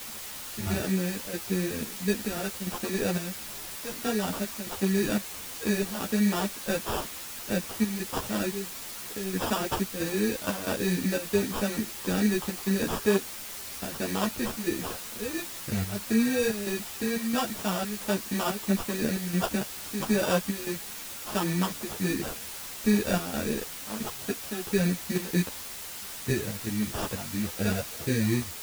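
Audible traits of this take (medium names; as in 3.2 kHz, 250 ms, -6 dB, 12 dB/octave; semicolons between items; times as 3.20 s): aliases and images of a low sample rate 2.1 kHz, jitter 0%; chopped level 1.5 Hz, depth 65%, duty 75%; a quantiser's noise floor 6-bit, dither triangular; a shimmering, thickened sound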